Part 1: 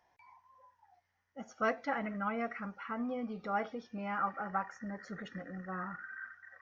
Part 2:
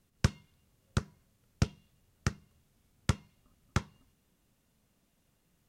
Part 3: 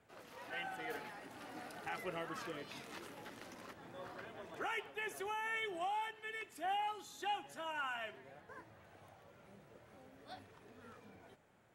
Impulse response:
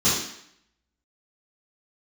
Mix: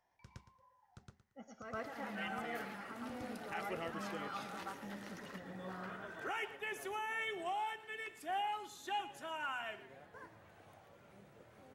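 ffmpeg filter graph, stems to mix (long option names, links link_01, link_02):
-filter_complex "[0:a]volume=-7.5dB,asplit=2[link_01][link_02];[link_02]volume=-4.5dB[link_03];[1:a]flanger=delay=5.9:depth=3.2:regen=-81:speed=0.9:shape=triangular,volume=-19.5dB,asplit=2[link_04][link_05];[link_05]volume=-3.5dB[link_06];[2:a]adelay=1650,volume=0dB,asplit=2[link_07][link_08];[link_08]volume=-15.5dB[link_09];[link_01][link_04]amix=inputs=2:normalize=0,alimiter=level_in=17.5dB:limit=-24dB:level=0:latency=1:release=171,volume=-17.5dB,volume=0dB[link_10];[link_03][link_06][link_09]amix=inputs=3:normalize=0,aecho=0:1:114|228|342:1|0.21|0.0441[link_11];[link_07][link_10][link_11]amix=inputs=3:normalize=0"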